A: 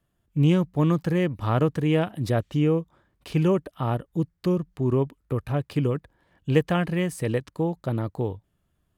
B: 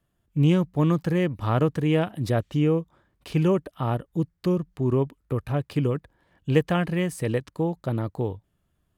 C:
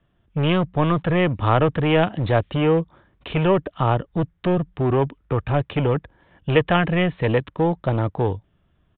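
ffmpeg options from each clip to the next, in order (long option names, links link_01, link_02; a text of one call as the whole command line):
ffmpeg -i in.wav -af anull out.wav
ffmpeg -i in.wav -filter_complex "[0:a]acrossover=split=480[link_01][link_02];[link_01]asoftclip=type=hard:threshold=-28dB[link_03];[link_03][link_02]amix=inputs=2:normalize=0,aresample=8000,aresample=44100,volume=8.5dB" out.wav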